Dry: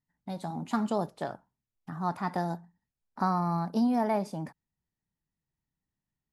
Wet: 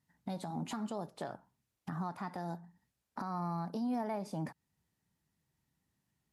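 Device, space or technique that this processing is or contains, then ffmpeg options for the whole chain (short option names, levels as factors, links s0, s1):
podcast mastering chain: -af "highpass=65,acompressor=threshold=0.01:ratio=2.5,alimiter=level_in=4.22:limit=0.0631:level=0:latency=1:release=389,volume=0.237,volume=2.66" -ar 32000 -c:a libmp3lame -b:a 96k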